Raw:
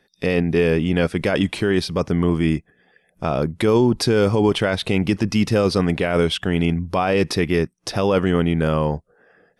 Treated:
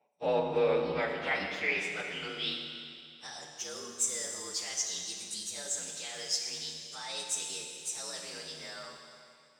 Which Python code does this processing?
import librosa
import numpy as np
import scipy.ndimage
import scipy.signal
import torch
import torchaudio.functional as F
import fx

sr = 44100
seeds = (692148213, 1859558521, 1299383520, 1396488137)

y = fx.partial_stretch(x, sr, pct=117)
y = fx.filter_sweep_bandpass(y, sr, from_hz=760.0, to_hz=6800.0, start_s=0.08, end_s=3.52, q=3.2)
y = fx.rev_schroeder(y, sr, rt60_s=2.4, comb_ms=26, drr_db=2.0)
y = y * librosa.db_to_amplitude(4.5)